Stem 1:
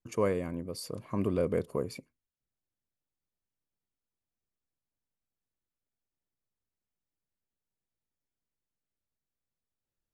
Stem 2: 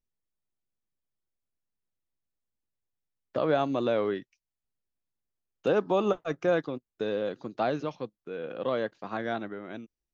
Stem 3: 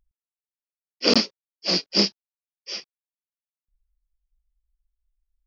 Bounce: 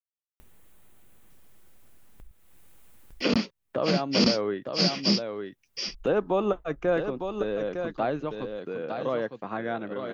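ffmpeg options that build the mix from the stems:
ffmpeg -i stem1.wav -i stem2.wav -i stem3.wav -filter_complex "[1:a]adelay=400,volume=0.5dB,asplit=2[link_01][link_02];[link_02]volume=-8dB[link_03];[2:a]asubboost=boost=9:cutoff=190,alimiter=limit=-10.5dB:level=0:latency=1:release=50,adelay=2200,volume=2.5dB,asplit=2[link_04][link_05];[link_05]volume=-4.5dB[link_06];[link_01][link_04]amix=inputs=2:normalize=0,equalizer=frequency=5200:width_type=o:width=0.81:gain=-12,alimiter=limit=-14dB:level=0:latency=1:release=284,volume=0dB[link_07];[link_03][link_06]amix=inputs=2:normalize=0,aecho=0:1:906:1[link_08];[link_07][link_08]amix=inputs=2:normalize=0,acompressor=mode=upward:threshold=-28dB:ratio=2.5" out.wav

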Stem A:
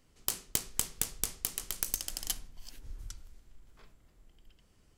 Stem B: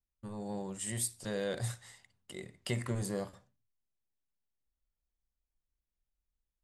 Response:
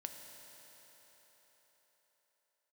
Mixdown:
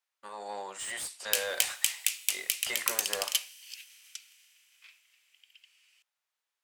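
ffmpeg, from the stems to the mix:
-filter_complex "[0:a]highpass=frequency=2500:width_type=q:width=4.3,adelay=1050,volume=2dB,asplit=2[link_01][link_02];[link_02]volume=-9dB[link_03];[1:a]highpass=770,asplit=2[link_04][link_05];[link_05]highpass=frequency=720:poles=1,volume=22dB,asoftclip=type=tanh:threshold=-21dB[link_06];[link_04][link_06]amix=inputs=2:normalize=0,lowpass=frequency=3200:poles=1,volume=-6dB,volume=-2dB[link_07];[2:a]atrim=start_sample=2205[link_08];[link_03][link_08]afir=irnorm=-1:irlink=0[link_09];[link_01][link_07][link_09]amix=inputs=3:normalize=0,asoftclip=type=tanh:threshold=-5dB"

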